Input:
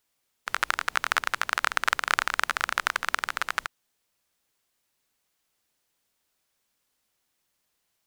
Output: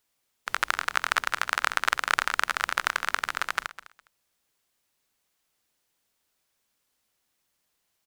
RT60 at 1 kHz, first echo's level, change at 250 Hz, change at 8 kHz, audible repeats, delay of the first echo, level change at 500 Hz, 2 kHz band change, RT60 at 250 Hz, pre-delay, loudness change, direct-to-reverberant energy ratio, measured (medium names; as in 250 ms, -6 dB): no reverb, -16.0 dB, 0.0 dB, 0.0 dB, 2, 205 ms, 0.0 dB, 0.0 dB, no reverb, no reverb, 0.0 dB, no reverb